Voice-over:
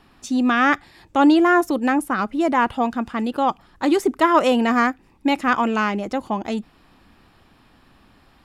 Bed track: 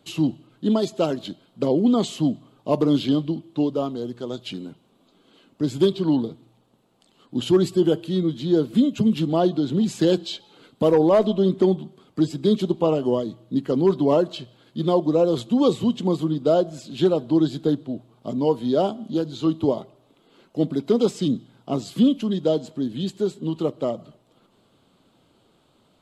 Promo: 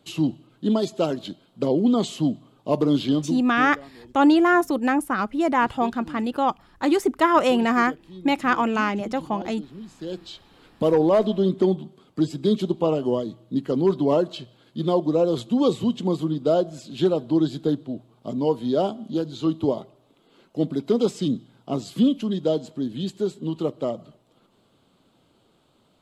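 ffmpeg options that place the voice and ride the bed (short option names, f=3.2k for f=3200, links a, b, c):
-filter_complex "[0:a]adelay=3000,volume=-2dB[a];[1:a]volume=16dB,afade=t=out:st=3.26:d=0.5:silence=0.133352,afade=t=in:st=9.98:d=0.94:silence=0.141254[b];[a][b]amix=inputs=2:normalize=0"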